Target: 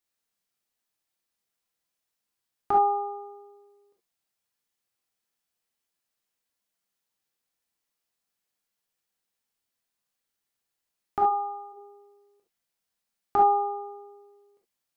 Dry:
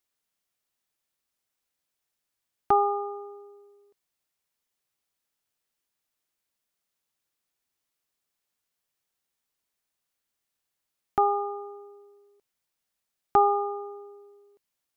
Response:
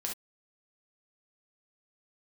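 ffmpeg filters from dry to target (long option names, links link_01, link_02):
-filter_complex "[0:a]asplit=3[link_01][link_02][link_03];[link_01]afade=type=out:start_time=11.25:duration=0.02[link_04];[link_02]highpass=630,afade=type=in:start_time=11.25:duration=0.02,afade=type=out:start_time=11.72:duration=0.02[link_05];[link_03]afade=type=in:start_time=11.72:duration=0.02[link_06];[link_04][link_05][link_06]amix=inputs=3:normalize=0[link_07];[1:a]atrim=start_sample=2205[link_08];[link_07][link_08]afir=irnorm=-1:irlink=0,volume=-2.5dB"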